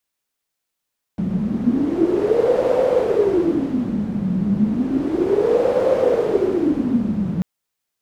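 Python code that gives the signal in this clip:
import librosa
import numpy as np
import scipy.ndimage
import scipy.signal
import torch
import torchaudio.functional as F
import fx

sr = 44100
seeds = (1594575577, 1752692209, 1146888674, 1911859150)

y = fx.wind(sr, seeds[0], length_s=6.24, low_hz=190.0, high_hz=520.0, q=11.0, gusts=2, swing_db=4.0)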